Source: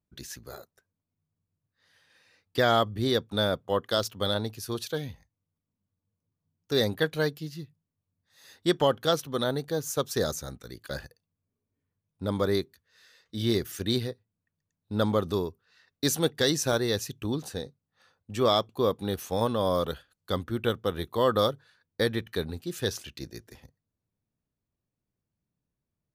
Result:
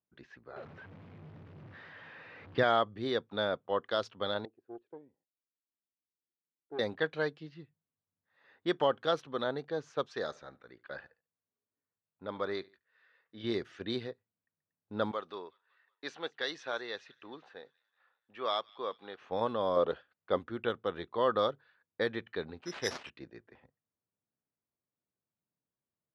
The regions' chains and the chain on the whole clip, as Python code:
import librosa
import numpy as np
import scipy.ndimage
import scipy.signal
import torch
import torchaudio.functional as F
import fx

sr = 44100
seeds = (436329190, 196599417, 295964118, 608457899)

y = fx.chain(x, sr, fx.zero_step(step_db=-39.0),
    fx.peak_eq(hz=120.0, db=10.0, octaves=2.0), at=(0.56, 2.63))
y = fx.chain(y, sr, fx.bandpass_q(hz=350.0, q=3.6),
    fx.tube_stage(drive_db=29.0, bias=0.75), at=(4.45, 6.79))
y = fx.chain(y, sr, fx.low_shelf(hz=460.0, db=-7.0),
    fx.echo_feedback(ms=72, feedback_pct=35, wet_db=-22.0), at=(10.06, 13.44))
y = fx.chain(y, sr, fx.highpass(hz=1100.0, slope=6),
    fx.echo_wet_highpass(ms=186, feedback_pct=62, hz=2000.0, wet_db=-21.0), at=(15.11, 19.2))
y = fx.chain(y, sr, fx.dynamic_eq(hz=470.0, q=0.81, threshold_db=-40.0, ratio=4.0, max_db=7),
    fx.resample_linear(factor=3), at=(19.76, 20.39))
y = fx.chain(y, sr, fx.resample_bad(factor=8, down='none', up='zero_stuff'),
    fx.high_shelf(hz=6800.0, db=3.5), at=(22.62, 23.1))
y = scipy.signal.sosfilt(scipy.signal.butter(2, 2700.0, 'lowpass', fs=sr, output='sos'), y)
y = fx.env_lowpass(y, sr, base_hz=2000.0, full_db=-21.5)
y = fx.highpass(y, sr, hz=440.0, slope=6)
y = y * librosa.db_to_amplitude(-2.5)